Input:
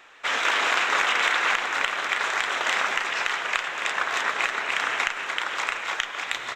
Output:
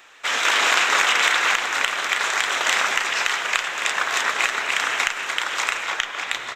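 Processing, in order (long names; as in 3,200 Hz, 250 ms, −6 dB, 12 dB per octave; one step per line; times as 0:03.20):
high-shelf EQ 4,600 Hz +11 dB, from 0:05.85 +3 dB
automatic gain control gain up to 4 dB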